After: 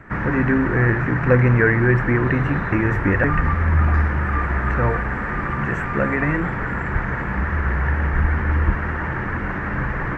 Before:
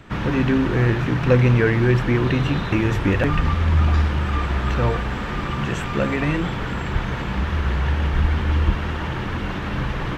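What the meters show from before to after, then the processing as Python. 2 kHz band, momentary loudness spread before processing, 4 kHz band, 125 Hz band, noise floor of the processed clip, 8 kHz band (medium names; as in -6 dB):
+5.5 dB, 9 LU, under -10 dB, 0.0 dB, -26 dBFS, no reading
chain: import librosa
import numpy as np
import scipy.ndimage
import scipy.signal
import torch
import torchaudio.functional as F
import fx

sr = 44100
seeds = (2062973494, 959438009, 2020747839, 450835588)

y = fx.high_shelf_res(x, sr, hz=2500.0, db=-11.0, q=3.0)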